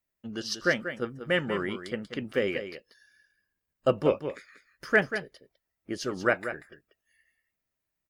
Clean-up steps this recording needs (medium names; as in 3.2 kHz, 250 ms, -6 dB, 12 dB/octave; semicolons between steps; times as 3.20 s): inverse comb 188 ms -10 dB